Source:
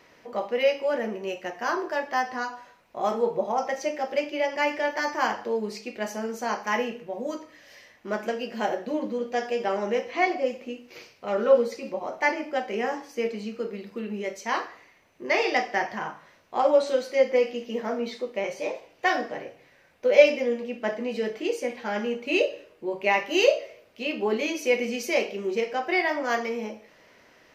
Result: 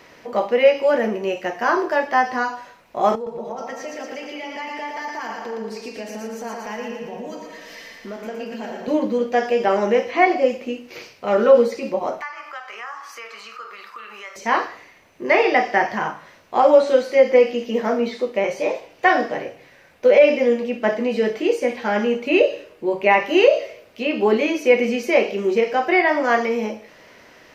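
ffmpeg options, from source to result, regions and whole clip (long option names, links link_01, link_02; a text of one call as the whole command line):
ffmpeg -i in.wav -filter_complex "[0:a]asettb=1/sr,asplit=3[link_01][link_02][link_03];[link_01]atrim=end=3.154[link_04];[link_02]atrim=start=3.15:end=8.88,asetpts=PTS-STARTPTS,afade=type=in:duration=0.004:curve=qsin,afade=type=out:start_time=5.726:duration=0.004:curve=qsin,aecho=1:1:4.4:0.67,atrim=end_sample=252693,acompressor=threshold=-42dB:ratio=3:attack=3.2:release=140:knee=1:detection=peak,aecho=1:1:115|230|345|460|575|690|805|920:0.596|0.34|0.194|0.11|0.0629|0.0358|0.0204|0.0116,atrim=end_sample=252693[link_05];[link_03]atrim=start=8.876[link_06];[link_04][link_05]acrossfade=duration=0.004:curve1=hsin:curve2=qsin[link_07];[link_07][link_06]acrossfade=duration=0.004:curve1=qsin:curve2=hsin,asettb=1/sr,asplit=3[link_08][link_09][link_10];[link_08]atrim=end=12.214[link_11];[link_09]atrim=start=12.21:end=14.36,asetpts=PTS-STARTPTS,afade=type=in:duration=0.004:curve=qsin,afade=type=out:start_time=2.146:duration=0.004:curve=qsin,highpass=frequency=1200:width_type=q:width=8.4,acompressor=threshold=-43dB:ratio=3:attack=3.2:release=140:knee=1:detection=peak[link_12];[link_10]atrim=start=14.356[link_13];[link_11][link_12]acrossfade=duration=0.004:curve1=hsin:curve2=qsin[link_14];[link_14][link_13]acrossfade=duration=0.004:curve1=qsin:curve2=hsin,acrossover=split=2700[link_15][link_16];[link_16]acompressor=threshold=-47dB:ratio=4:attack=1:release=60[link_17];[link_15][link_17]amix=inputs=2:normalize=0,alimiter=level_in=11dB:limit=-1dB:release=50:level=0:latency=1,volume=-2.5dB" out.wav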